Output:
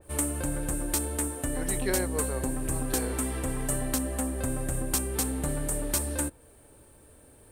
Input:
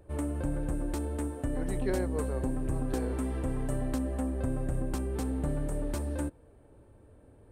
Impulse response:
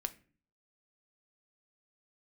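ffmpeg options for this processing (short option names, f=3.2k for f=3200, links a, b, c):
-af "bandreject=f=50:t=h:w=6,bandreject=f=100:t=h:w=6,crystalizer=i=9.5:c=0,adynamicequalizer=threshold=0.00562:dfrequency=2800:dqfactor=0.7:tfrequency=2800:tqfactor=0.7:attack=5:release=100:ratio=0.375:range=2.5:mode=cutabove:tftype=highshelf"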